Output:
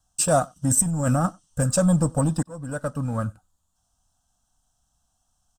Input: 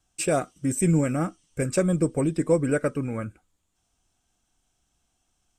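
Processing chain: waveshaping leveller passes 1; 0.69–1.26 s: compressor with a negative ratio -23 dBFS, ratio -1; static phaser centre 920 Hz, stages 4; 2.43–3.24 s: fade in linear; echo from a far wall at 16 m, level -28 dB; trim +5 dB

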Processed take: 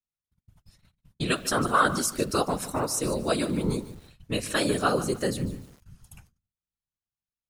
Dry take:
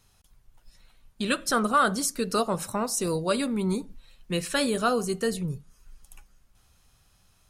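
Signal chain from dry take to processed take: gate -52 dBFS, range -37 dB; hum notches 50/100/150 Hz; whisper effect; bit-crushed delay 148 ms, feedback 35%, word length 7-bit, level -14.5 dB

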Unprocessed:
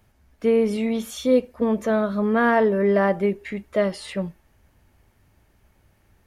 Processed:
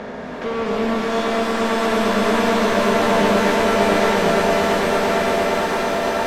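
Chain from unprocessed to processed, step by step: spectral levelling over time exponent 0.4; 1.02–1.89 s: steep high-pass 730 Hz 48 dB/octave; hard clipper -24 dBFS, distortion -4 dB; distance through air 150 m; echo with a slow build-up 114 ms, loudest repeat 8, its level -7 dB; pitch-shifted reverb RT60 3.3 s, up +7 st, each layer -2 dB, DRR 3.5 dB; trim +1.5 dB

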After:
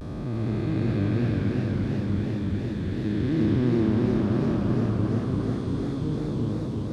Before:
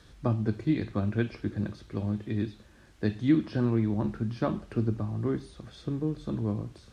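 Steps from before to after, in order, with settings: spectral blur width 718 ms; vibrato 0.32 Hz 38 cents; modulated delay 344 ms, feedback 69%, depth 112 cents, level -3 dB; trim +6 dB

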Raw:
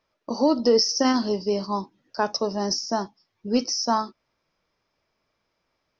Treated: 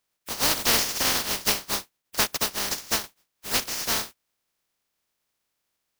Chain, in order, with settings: spectral contrast reduction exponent 0.11; 1.40–3.04 s: transient shaper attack +6 dB, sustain -10 dB; trim -3 dB

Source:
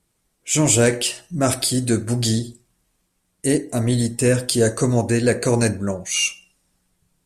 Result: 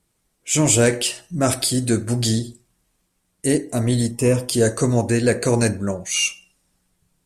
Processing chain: 4.11–4.53 s: graphic EQ with 31 bands 1 kHz +7 dB, 1.6 kHz -12 dB, 4 kHz -11 dB, 8 kHz -7 dB

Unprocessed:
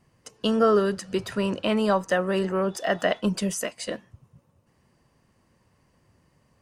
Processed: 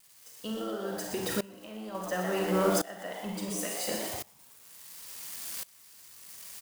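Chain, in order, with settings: zero-crossing glitches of -27 dBFS; 0.61–1.95 s: compression, threshold -27 dBFS, peak gain reduction 11 dB; on a send: frequency-shifting echo 120 ms, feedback 53%, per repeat +110 Hz, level -8 dB; on the sum: Schroeder reverb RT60 0.65 s, combs from 33 ms, DRR 3 dB; sawtooth tremolo in dB swelling 0.71 Hz, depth 22 dB

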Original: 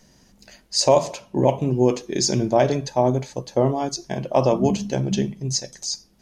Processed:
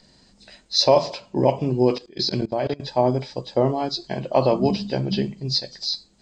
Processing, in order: knee-point frequency compression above 2.9 kHz 1.5:1; tone controls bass -2 dB, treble +6 dB; 1.98–2.80 s: level held to a coarse grid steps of 23 dB

